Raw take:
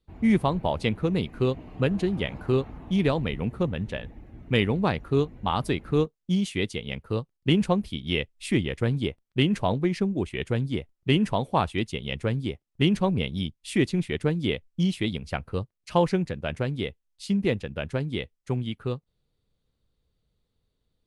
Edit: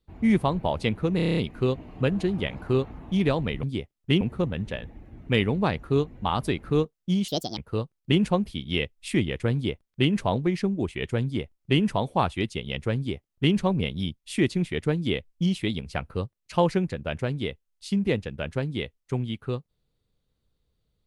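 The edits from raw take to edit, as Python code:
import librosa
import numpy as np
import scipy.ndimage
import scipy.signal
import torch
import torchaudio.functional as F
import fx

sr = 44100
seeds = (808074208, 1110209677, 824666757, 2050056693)

y = fx.edit(x, sr, fx.stutter(start_s=1.16, slice_s=0.03, count=8),
    fx.speed_span(start_s=6.49, length_s=0.46, speed=1.57),
    fx.duplicate(start_s=12.34, length_s=0.58, to_s=3.42), tone=tone)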